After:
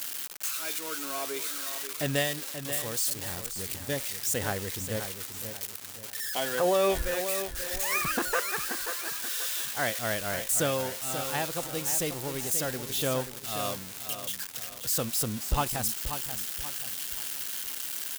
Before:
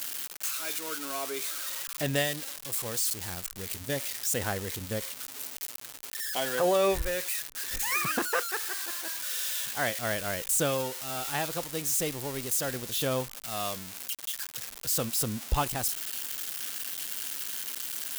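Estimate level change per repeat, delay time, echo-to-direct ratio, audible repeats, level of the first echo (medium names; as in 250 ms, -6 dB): -8.5 dB, 533 ms, -9.0 dB, 3, -9.5 dB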